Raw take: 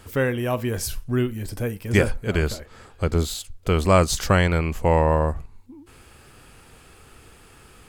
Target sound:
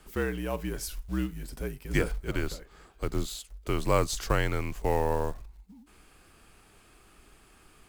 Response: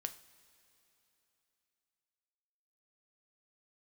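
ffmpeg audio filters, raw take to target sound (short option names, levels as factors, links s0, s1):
-af "acrusher=bits=6:mode=log:mix=0:aa=0.000001,afreqshift=-57,volume=0.398"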